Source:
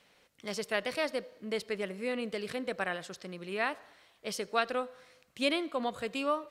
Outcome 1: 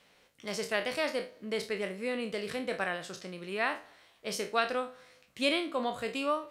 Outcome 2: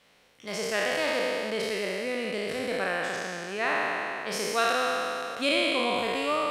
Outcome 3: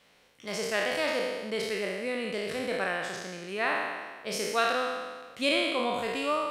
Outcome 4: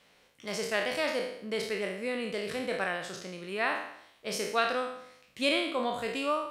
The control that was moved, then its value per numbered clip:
peak hold with a decay on every bin, RT60: 0.3, 3.12, 1.48, 0.71 seconds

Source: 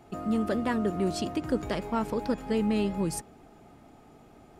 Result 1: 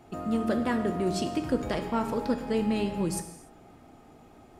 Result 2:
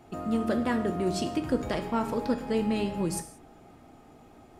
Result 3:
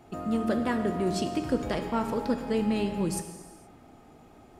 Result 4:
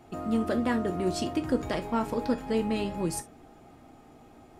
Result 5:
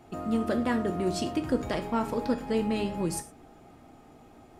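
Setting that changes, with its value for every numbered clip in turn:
reverb whose tail is shaped and stops, gate: 320, 210, 500, 90, 140 milliseconds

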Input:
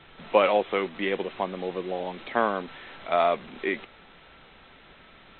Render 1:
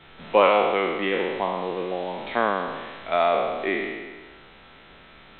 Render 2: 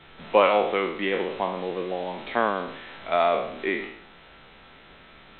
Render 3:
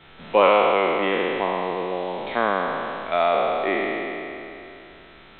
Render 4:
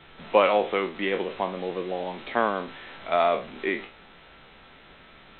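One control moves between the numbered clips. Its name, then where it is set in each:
peak hold with a decay on every bin, RT60: 1.41, 0.66, 2.96, 0.32 seconds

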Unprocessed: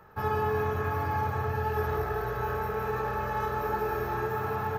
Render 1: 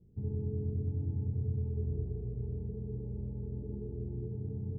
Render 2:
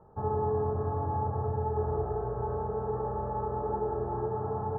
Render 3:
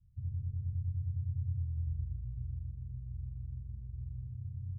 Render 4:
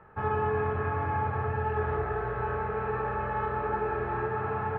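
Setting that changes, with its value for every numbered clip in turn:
inverse Chebyshev low-pass filter, stop band from: 1,300, 4,000, 520, 10,000 Hertz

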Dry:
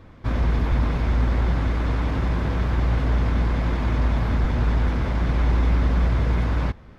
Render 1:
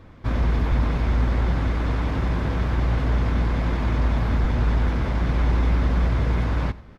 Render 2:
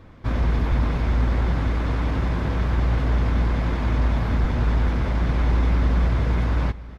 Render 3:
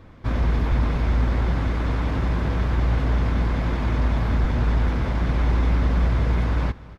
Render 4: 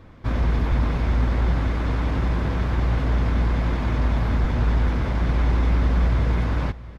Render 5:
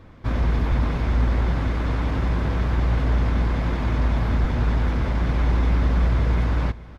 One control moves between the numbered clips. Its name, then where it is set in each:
single-tap delay, delay time: 93, 1,073, 234, 686, 425 milliseconds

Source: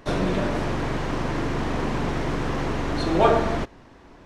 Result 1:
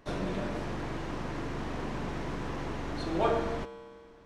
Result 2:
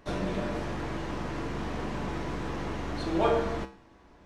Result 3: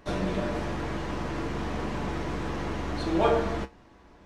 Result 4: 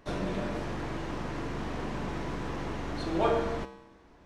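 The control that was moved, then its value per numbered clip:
tuned comb filter, decay: 2.2, 0.42, 0.17, 0.92 seconds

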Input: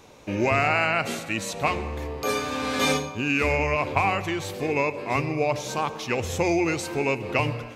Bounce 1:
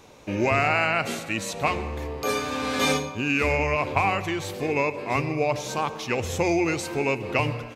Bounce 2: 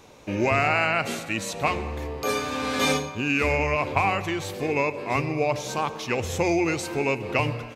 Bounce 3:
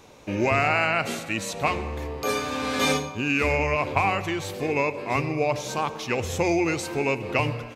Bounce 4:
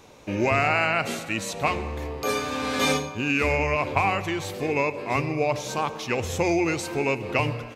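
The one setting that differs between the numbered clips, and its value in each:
far-end echo of a speakerphone, delay time: 150, 240, 90, 390 milliseconds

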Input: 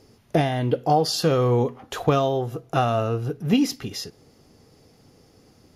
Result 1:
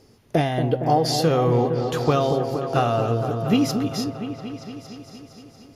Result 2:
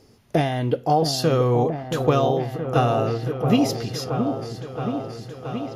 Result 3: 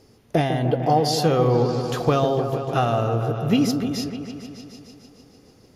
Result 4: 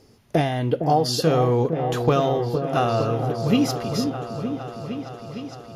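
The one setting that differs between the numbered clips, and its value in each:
echo whose low-pass opens from repeat to repeat, delay time: 231, 674, 150, 459 milliseconds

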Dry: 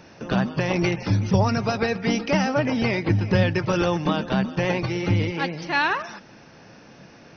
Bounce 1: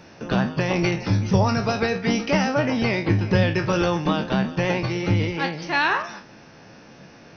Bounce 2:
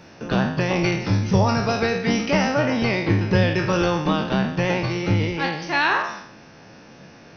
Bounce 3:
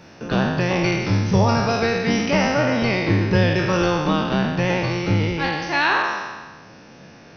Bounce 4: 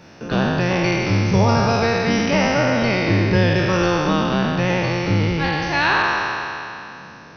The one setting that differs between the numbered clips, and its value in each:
peak hold with a decay on every bin, RT60: 0.3, 0.65, 1.36, 2.83 seconds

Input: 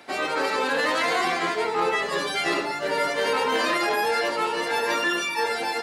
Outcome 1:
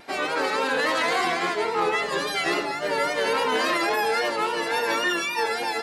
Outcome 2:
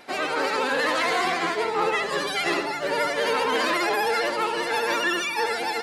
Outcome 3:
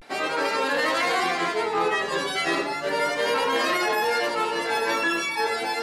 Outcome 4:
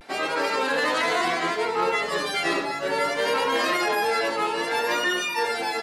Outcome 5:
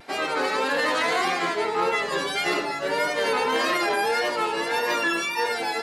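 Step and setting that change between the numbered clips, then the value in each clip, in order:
pitch vibrato, speed: 3.6, 15, 0.34, 0.63, 1.7 Hertz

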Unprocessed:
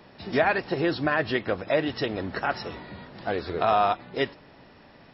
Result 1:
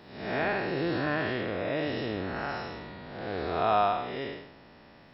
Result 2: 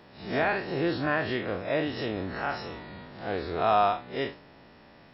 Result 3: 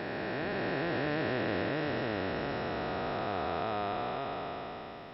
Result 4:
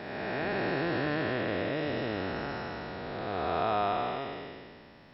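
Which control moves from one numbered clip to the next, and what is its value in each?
spectrum smeared in time, width: 251, 96, 1,580, 637 milliseconds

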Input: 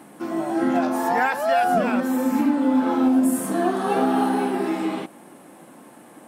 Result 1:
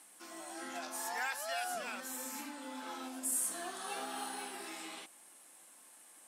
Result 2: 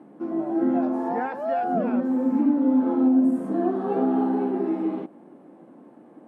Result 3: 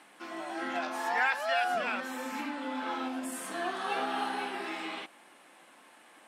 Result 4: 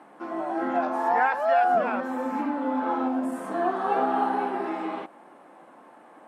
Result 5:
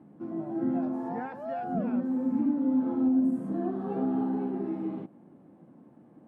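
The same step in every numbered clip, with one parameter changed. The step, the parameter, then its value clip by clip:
resonant band-pass, frequency: 7,800, 310, 2,900, 960, 110 Hertz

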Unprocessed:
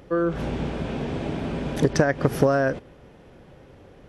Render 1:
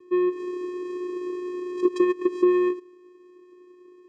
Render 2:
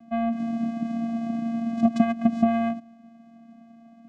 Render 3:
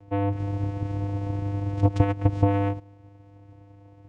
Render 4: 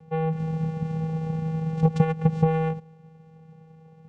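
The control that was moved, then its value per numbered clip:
channel vocoder, frequency: 360, 230, 100, 160 Hertz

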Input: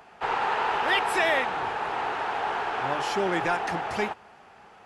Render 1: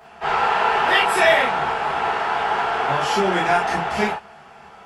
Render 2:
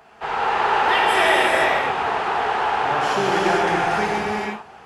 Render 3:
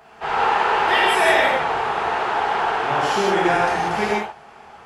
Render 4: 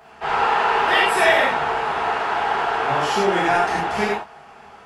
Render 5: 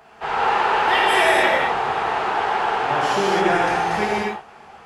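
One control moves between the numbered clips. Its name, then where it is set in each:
reverb whose tail is shaped and stops, gate: 80, 520, 210, 130, 300 milliseconds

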